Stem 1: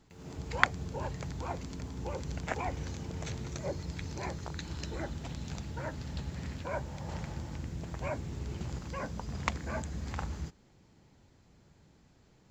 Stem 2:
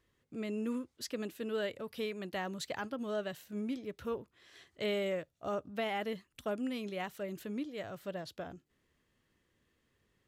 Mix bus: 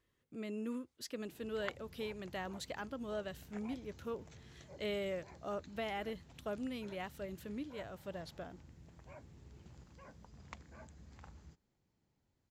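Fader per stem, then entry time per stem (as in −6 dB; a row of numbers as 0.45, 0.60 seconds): −18.5, −4.5 decibels; 1.05, 0.00 seconds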